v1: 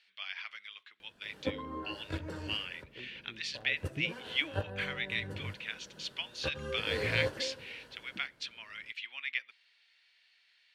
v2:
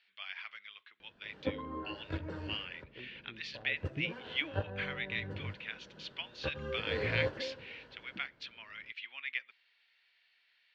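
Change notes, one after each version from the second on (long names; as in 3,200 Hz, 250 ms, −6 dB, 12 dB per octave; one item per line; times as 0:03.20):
master: add high-frequency loss of the air 190 metres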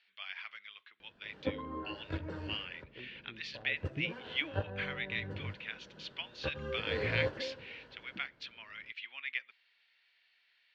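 nothing changed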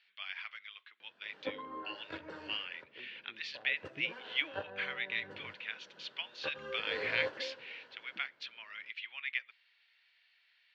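master: add meter weighting curve A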